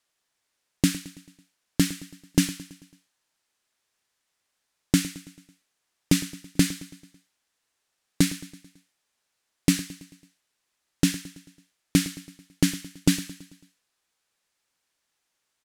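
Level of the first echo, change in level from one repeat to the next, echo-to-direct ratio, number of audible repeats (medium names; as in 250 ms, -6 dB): -17.0 dB, -5.5 dB, -15.5 dB, 4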